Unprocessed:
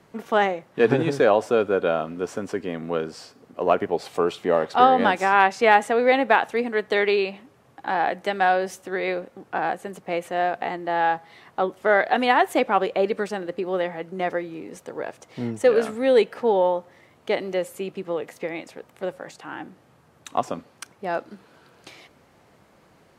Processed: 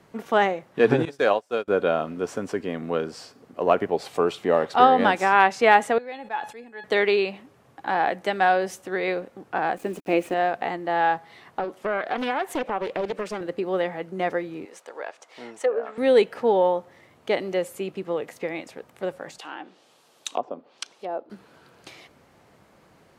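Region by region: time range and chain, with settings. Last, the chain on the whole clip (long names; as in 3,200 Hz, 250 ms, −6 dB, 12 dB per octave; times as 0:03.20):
0:01.05–0:01.68: spectral tilt +2 dB per octave + expander for the loud parts 2.5 to 1, over −36 dBFS
0:05.98–0:06.84: tuned comb filter 850 Hz, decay 0.23 s, mix 90% + level that may fall only so fast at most 120 dB per second
0:09.77–0:10.34: centre clipping without the shift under −46 dBFS + hollow resonant body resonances 300/2,500 Hz, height 12 dB, ringing for 25 ms
0:11.59–0:13.41: high-pass filter 160 Hz + downward compressor 2.5 to 1, threshold −25 dBFS + highs frequency-modulated by the lows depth 0.51 ms
0:14.65–0:15.98: running median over 3 samples + high-pass filter 620 Hz + treble cut that deepens with the level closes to 840 Hz, closed at −20.5 dBFS
0:19.38–0:21.30: treble cut that deepens with the level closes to 720 Hz, closed at −26.5 dBFS + high-pass filter 380 Hz + high shelf with overshoot 2,500 Hz +8.5 dB, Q 1.5
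whole clip: no processing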